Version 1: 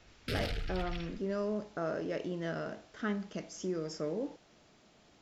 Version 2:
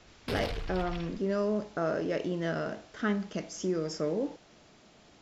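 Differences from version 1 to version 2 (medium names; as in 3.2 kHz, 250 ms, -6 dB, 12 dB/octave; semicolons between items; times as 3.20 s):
speech +5.0 dB; background: remove brick-wall FIR band-stop 370–1200 Hz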